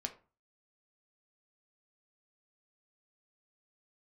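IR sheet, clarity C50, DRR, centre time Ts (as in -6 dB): 14.0 dB, 4.5 dB, 8 ms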